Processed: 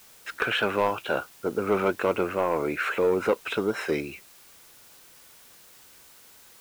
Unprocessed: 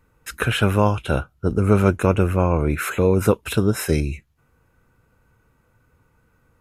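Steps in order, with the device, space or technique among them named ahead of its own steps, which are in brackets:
tape answering machine (band-pass filter 380–3,300 Hz; soft clipping −14.5 dBFS, distortion −13 dB; tape wow and flutter; white noise bed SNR 24 dB)

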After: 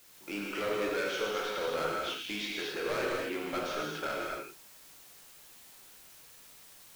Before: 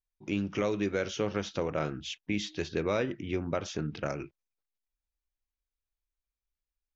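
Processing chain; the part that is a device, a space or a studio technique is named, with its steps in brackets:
drive-through speaker (band-pass filter 470–3,900 Hz; parametric band 1,400 Hz +8 dB 0.41 octaves; hard clipping −33 dBFS, distortion −6 dB; white noise bed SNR 18 dB)
reverb whose tail is shaped and stops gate 300 ms flat, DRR −3.5 dB

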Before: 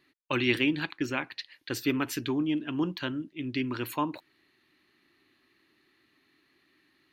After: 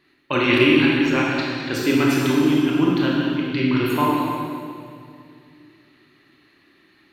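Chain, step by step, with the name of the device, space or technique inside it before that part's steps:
swimming-pool hall (convolution reverb RT60 2.3 s, pre-delay 22 ms, DRR −4.5 dB; high-shelf EQ 4,900 Hz −6.5 dB)
level +6 dB

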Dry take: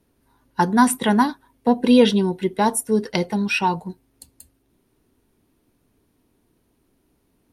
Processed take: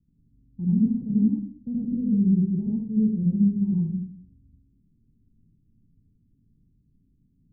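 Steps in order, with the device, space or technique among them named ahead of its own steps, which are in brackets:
club heard from the street (brickwall limiter −13 dBFS, peak gain reduction 10 dB; low-pass filter 200 Hz 24 dB per octave; convolution reverb RT60 0.55 s, pre-delay 71 ms, DRR −4.5 dB)

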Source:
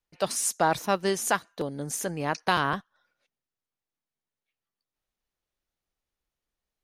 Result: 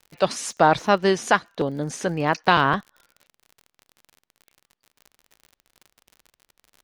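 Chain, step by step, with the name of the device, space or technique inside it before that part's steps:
lo-fi chain (low-pass filter 4,400 Hz 12 dB per octave; tape wow and flutter; surface crackle 52 per second −43 dBFS)
level +7 dB

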